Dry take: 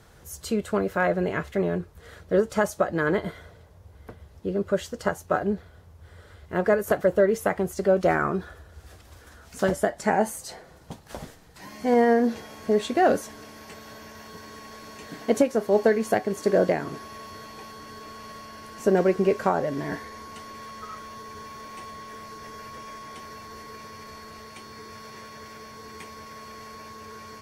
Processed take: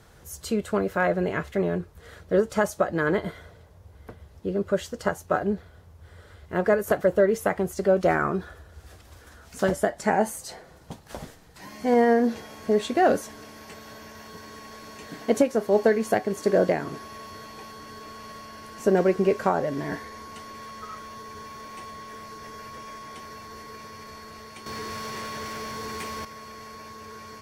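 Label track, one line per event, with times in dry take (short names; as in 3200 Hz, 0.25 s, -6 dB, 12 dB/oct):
24.660000	26.250000	sample leveller passes 3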